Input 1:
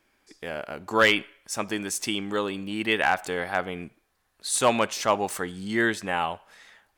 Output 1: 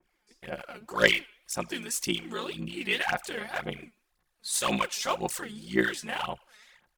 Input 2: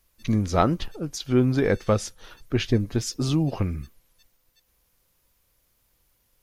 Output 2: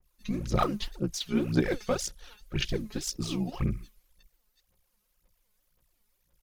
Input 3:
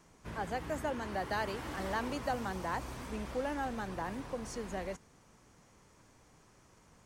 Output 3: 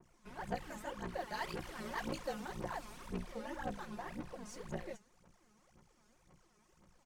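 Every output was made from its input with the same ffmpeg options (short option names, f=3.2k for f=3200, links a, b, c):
-af "aeval=exprs='val(0)*sin(2*PI*30*n/s)':c=same,aecho=1:1:5.6:0.45,aphaser=in_gain=1:out_gain=1:delay=4.8:decay=0.72:speed=1.9:type=sinusoidal,adynamicequalizer=threshold=0.0126:dfrequency=2000:dqfactor=0.7:tfrequency=2000:tqfactor=0.7:attack=5:release=100:ratio=0.375:range=3.5:mode=boostabove:tftype=highshelf,volume=-8dB"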